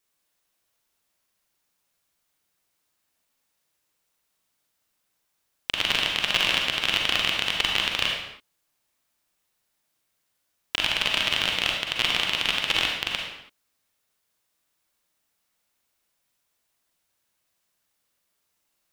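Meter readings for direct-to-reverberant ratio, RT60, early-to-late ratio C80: -0.5 dB, no single decay rate, 4.0 dB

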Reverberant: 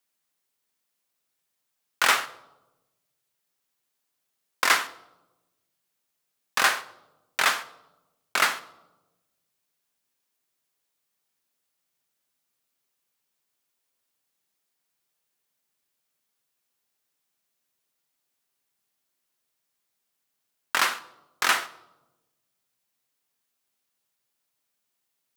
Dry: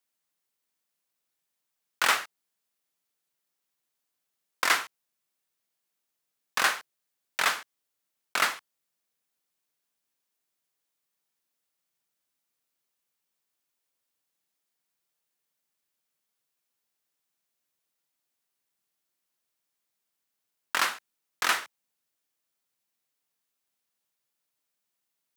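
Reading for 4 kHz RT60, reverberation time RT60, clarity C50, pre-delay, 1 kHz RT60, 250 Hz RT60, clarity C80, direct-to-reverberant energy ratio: 0.60 s, 1.0 s, 16.0 dB, 5 ms, 0.90 s, 1.4 s, 18.5 dB, 11.0 dB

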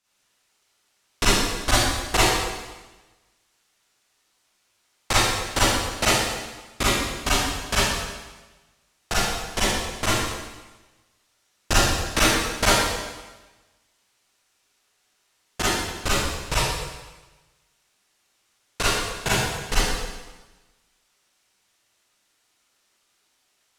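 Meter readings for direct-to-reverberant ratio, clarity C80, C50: -10.0 dB, 0.0 dB, -4.0 dB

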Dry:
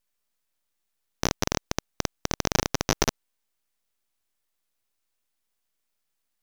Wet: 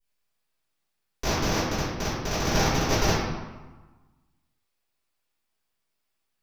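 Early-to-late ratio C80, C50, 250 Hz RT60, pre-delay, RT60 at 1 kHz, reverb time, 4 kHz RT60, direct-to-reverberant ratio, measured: 1.5 dB, -1.5 dB, 1.3 s, 3 ms, 1.3 s, 1.2 s, 0.85 s, -16.5 dB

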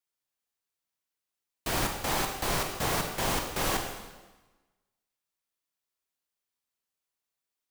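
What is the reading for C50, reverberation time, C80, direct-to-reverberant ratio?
5.0 dB, 1.2 s, 7.0 dB, 2.5 dB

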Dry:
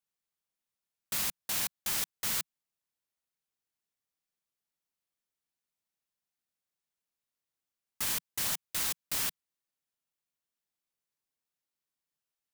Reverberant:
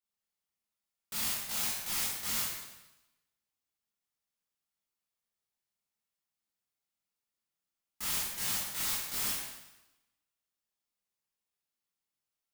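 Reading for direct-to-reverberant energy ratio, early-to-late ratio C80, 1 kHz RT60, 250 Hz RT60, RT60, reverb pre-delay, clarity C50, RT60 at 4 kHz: -7.5 dB, 2.5 dB, 1.0 s, 0.95 s, 1.0 s, 7 ms, 0.0 dB, 0.95 s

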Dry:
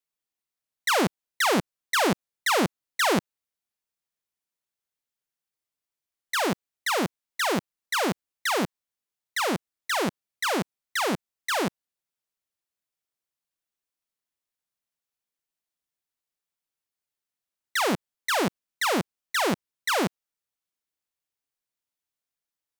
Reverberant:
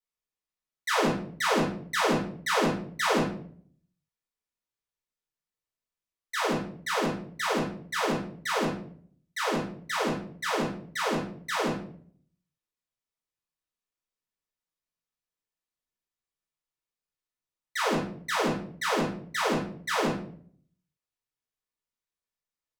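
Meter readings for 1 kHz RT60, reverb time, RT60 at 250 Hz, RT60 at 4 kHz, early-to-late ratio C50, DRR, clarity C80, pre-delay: 0.45 s, 0.55 s, 0.75 s, 0.40 s, 5.0 dB, -7.0 dB, 9.5 dB, 4 ms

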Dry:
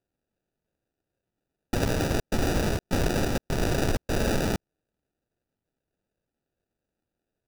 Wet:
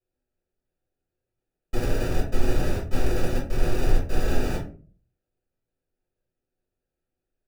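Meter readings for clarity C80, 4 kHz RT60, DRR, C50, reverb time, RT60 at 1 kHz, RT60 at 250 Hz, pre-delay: 13.0 dB, 0.25 s, -9.5 dB, 7.0 dB, 0.40 s, 0.35 s, 0.60 s, 3 ms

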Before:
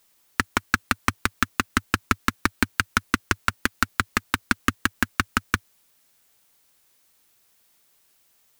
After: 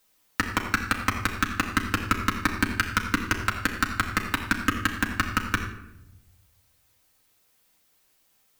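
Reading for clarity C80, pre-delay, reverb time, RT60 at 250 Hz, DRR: 8.5 dB, 4 ms, 0.95 s, 1.3 s, -1.5 dB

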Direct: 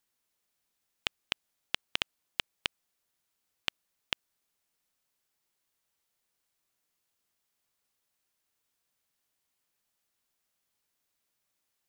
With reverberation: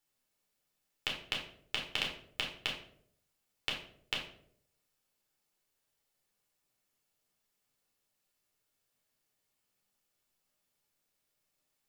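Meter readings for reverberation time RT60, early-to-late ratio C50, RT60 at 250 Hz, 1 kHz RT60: 0.65 s, 6.0 dB, 0.80 s, 0.55 s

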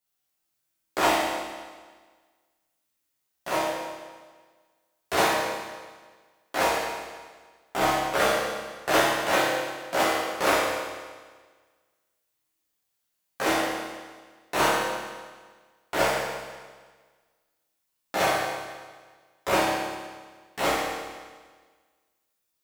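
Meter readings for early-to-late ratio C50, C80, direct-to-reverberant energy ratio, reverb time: -1.0 dB, 1.0 dB, -9.5 dB, 1.5 s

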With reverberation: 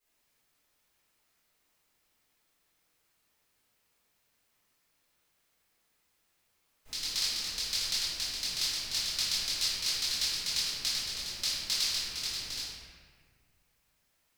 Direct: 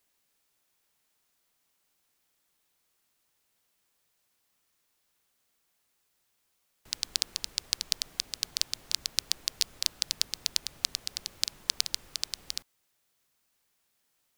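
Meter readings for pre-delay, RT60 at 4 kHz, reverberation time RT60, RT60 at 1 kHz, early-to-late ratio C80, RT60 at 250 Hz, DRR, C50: 3 ms, 1.1 s, 1.8 s, 1.7 s, 0.0 dB, 2.1 s, -14.5 dB, -2.5 dB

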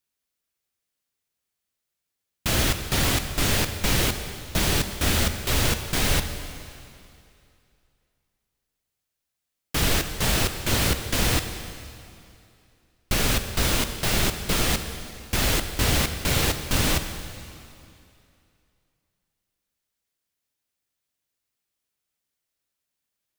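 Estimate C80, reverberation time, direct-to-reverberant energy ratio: 9.5 dB, 2.6 s, 7.5 dB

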